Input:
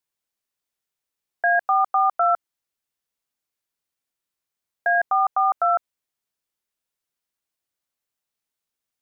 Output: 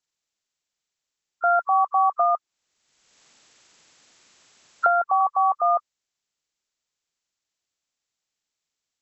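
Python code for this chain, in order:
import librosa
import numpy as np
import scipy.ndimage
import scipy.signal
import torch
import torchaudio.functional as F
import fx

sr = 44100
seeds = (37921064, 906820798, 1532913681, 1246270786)

y = fx.freq_compress(x, sr, knee_hz=1000.0, ratio=1.5)
y = fx.band_squash(y, sr, depth_pct=100, at=(2.2, 5.21))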